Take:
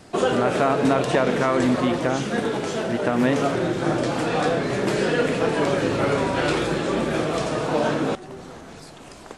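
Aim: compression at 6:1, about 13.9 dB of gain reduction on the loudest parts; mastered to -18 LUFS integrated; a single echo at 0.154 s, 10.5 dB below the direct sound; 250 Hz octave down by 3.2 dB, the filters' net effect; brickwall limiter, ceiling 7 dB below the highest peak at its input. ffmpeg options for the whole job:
-af "equalizer=f=250:t=o:g=-4,acompressor=threshold=-32dB:ratio=6,alimiter=level_in=2.5dB:limit=-24dB:level=0:latency=1,volume=-2.5dB,aecho=1:1:154:0.299,volume=18dB"

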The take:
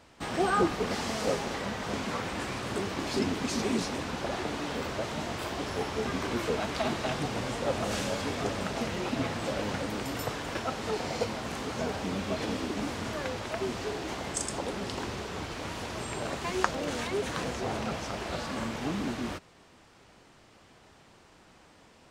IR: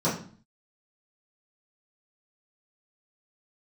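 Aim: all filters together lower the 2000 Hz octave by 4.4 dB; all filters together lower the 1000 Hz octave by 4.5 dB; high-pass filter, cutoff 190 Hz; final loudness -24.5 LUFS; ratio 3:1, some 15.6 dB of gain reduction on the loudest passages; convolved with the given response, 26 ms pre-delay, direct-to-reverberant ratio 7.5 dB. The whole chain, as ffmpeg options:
-filter_complex "[0:a]highpass=190,equalizer=f=1k:t=o:g=-5,equalizer=f=2k:t=o:g=-4,acompressor=threshold=-44dB:ratio=3,asplit=2[a][b];[1:a]atrim=start_sample=2205,adelay=26[c];[b][c]afir=irnorm=-1:irlink=0,volume=-20dB[d];[a][d]amix=inputs=2:normalize=0,volume=18dB"

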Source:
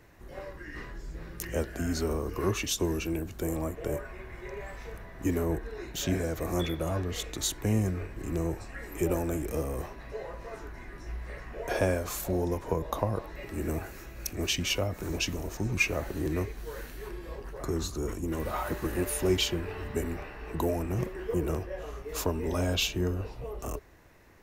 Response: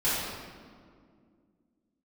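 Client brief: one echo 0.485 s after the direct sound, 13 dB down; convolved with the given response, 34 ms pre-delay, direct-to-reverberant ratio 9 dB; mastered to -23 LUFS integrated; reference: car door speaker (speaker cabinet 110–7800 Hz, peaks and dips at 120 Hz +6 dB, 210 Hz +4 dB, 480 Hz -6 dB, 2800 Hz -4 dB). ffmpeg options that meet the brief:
-filter_complex "[0:a]aecho=1:1:485:0.224,asplit=2[a][b];[1:a]atrim=start_sample=2205,adelay=34[c];[b][c]afir=irnorm=-1:irlink=0,volume=-21dB[d];[a][d]amix=inputs=2:normalize=0,highpass=110,equalizer=f=120:t=q:w=4:g=6,equalizer=f=210:t=q:w=4:g=4,equalizer=f=480:t=q:w=4:g=-6,equalizer=f=2.8k:t=q:w=4:g=-4,lowpass=f=7.8k:w=0.5412,lowpass=f=7.8k:w=1.3066,volume=9.5dB"

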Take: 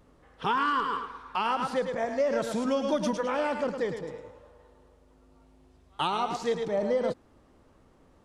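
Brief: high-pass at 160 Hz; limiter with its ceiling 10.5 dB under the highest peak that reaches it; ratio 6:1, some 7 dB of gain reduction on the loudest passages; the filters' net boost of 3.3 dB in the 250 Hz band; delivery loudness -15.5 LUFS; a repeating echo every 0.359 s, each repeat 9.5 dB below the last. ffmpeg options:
-af "highpass=160,equalizer=f=250:t=o:g=4.5,acompressor=threshold=-29dB:ratio=6,alimiter=level_in=3.5dB:limit=-24dB:level=0:latency=1,volume=-3.5dB,aecho=1:1:359|718|1077|1436:0.335|0.111|0.0365|0.012,volume=21dB"

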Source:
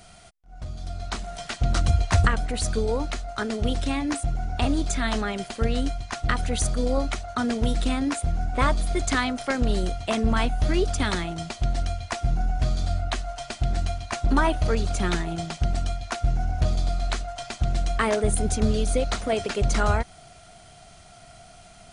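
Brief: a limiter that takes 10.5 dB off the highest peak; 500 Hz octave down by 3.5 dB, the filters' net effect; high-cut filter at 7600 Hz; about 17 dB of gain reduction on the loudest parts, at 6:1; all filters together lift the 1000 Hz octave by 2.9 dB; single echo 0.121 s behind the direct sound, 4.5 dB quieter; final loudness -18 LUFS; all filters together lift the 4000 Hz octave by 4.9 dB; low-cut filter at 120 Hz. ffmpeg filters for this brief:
-af "highpass=120,lowpass=7.6k,equalizer=f=500:t=o:g=-7,equalizer=f=1k:t=o:g=6,equalizer=f=4k:t=o:g=6,acompressor=threshold=-35dB:ratio=6,alimiter=level_in=4dB:limit=-24dB:level=0:latency=1,volume=-4dB,aecho=1:1:121:0.596,volume=20.5dB"

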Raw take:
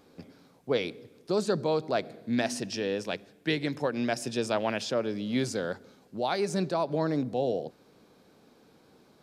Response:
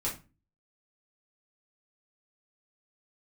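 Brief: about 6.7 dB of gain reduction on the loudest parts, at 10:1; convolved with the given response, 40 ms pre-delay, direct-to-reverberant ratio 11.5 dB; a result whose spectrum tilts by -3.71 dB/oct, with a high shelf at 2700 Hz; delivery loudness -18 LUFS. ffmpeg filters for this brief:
-filter_complex "[0:a]highshelf=f=2.7k:g=9,acompressor=threshold=-28dB:ratio=10,asplit=2[a][b];[1:a]atrim=start_sample=2205,adelay=40[c];[b][c]afir=irnorm=-1:irlink=0,volume=-16dB[d];[a][d]amix=inputs=2:normalize=0,volume=15.5dB"

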